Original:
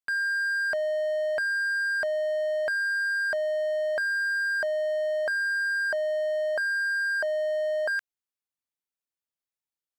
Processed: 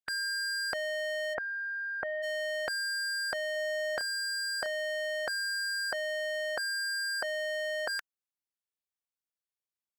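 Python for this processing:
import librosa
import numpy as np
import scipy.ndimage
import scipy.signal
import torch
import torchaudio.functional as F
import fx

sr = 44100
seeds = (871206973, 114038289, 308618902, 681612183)

y = fx.spec_clip(x, sr, under_db=18)
y = fx.cheby2_lowpass(y, sr, hz=10000.0, order=4, stop_db=80, at=(1.33, 2.22), fade=0.02)
y = fx.doubler(y, sr, ms=31.0, db=-12.5, at=(3.53, 4.68))
y = y * 10.0 ** (-5.5 / 20.0)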